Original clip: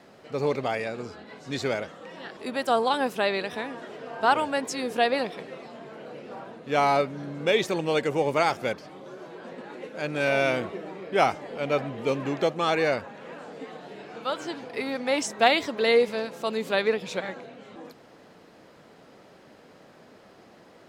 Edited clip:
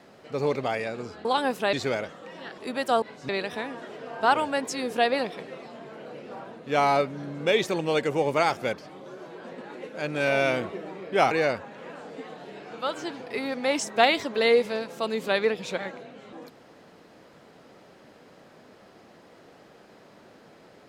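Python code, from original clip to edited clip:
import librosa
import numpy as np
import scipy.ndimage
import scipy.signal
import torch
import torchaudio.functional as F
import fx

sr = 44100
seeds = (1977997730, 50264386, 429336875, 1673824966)

y = fx.edit(x, sr, fx.swap(start_s=1.25, length_s=0.27, other_s=2.81, other_length_s=0.48),
    fx.cut(start_s=11.31, length_s=1.43), tone=tone)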